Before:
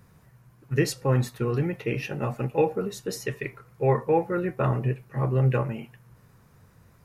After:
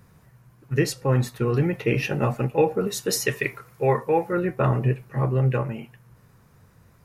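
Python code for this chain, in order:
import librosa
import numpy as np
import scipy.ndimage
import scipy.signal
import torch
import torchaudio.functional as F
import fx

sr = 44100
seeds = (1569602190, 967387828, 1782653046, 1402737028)

y = fx.tilt_eq(x, sr, slope=1.5, at=(2.87, 4.33))
y = fx.rider(y, sr, range_db=4, speed_s=0.5)
y = y * 10.0 ** (3.5 / 20.0)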